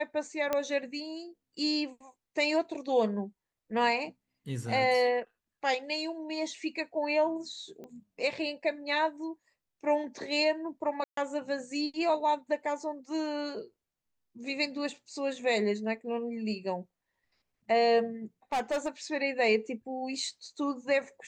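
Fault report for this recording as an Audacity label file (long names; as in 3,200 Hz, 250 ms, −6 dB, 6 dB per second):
0.530000	0.530000	click −15 dBFS
7.840000	7.840000	click −33 dBFS
11.040000	11.170000	drop-out 133 ms
18.520000	18.880000	clipping −26 dBFS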